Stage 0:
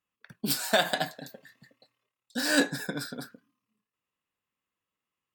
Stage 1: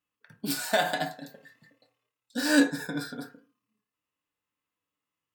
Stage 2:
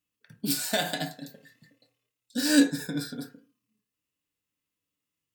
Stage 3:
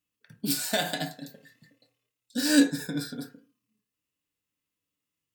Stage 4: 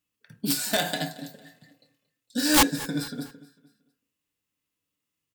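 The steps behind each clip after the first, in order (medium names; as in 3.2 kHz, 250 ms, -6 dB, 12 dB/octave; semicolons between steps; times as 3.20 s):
FDN reverb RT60 0.34 s, low-frequency decay 0.75×, high-frequency decay 0.35×, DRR 6.5 dB; harmonic-percussive split percussive -7 dB; trim +1.5 dB
peaking EQ 1 kHz -12 dB 2.1 oct; trim +4.5 dB
no audible change
integer overflow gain 14 dB; feedback delay 227 ms, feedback 41%, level -20 dB; trim +2 dB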